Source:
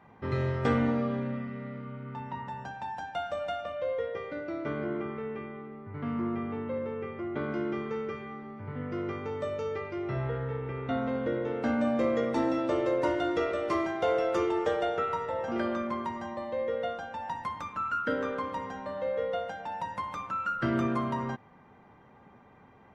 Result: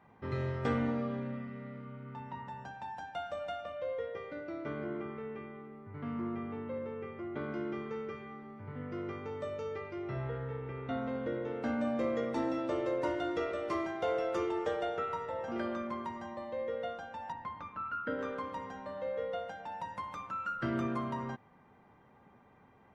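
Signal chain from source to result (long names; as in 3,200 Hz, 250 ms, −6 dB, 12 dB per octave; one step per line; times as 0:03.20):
0:17.32–0:18.19: high-frequency loss of the air 230 metres
level −5.5 dB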